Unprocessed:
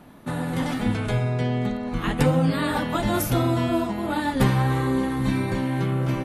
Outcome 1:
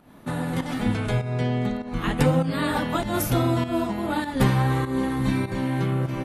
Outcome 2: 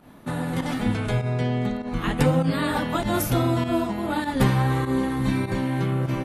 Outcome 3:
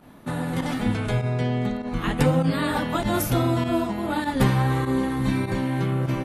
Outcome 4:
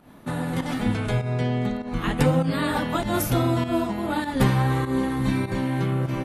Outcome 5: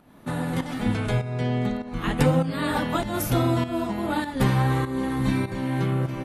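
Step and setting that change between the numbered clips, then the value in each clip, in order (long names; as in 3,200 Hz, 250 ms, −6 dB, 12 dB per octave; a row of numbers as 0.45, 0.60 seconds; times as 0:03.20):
fake sidechain pumping, release: 240, 92, 61, 149, 424 milliseconds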